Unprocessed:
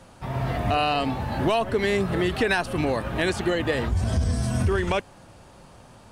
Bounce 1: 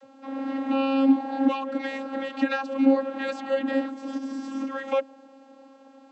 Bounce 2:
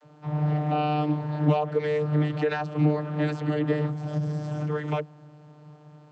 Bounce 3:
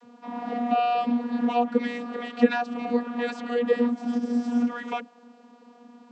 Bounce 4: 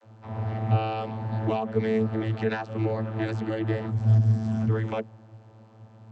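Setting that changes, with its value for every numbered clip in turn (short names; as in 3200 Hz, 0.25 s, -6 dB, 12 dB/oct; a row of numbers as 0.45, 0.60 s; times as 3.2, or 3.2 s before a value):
vocoder, frequency: 270, 150, 240, 110 Hz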